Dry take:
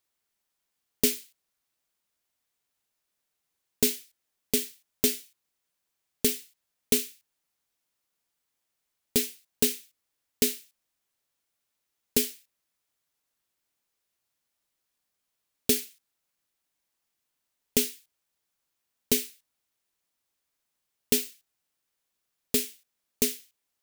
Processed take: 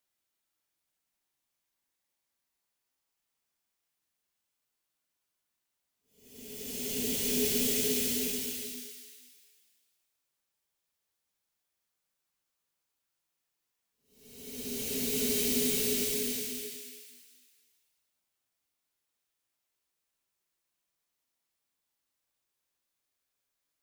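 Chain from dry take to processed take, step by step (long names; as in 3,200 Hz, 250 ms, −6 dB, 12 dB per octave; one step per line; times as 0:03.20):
extreme stretch with random phases 5.9×, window 0.50 s, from 0:16.49
level −2.5 dB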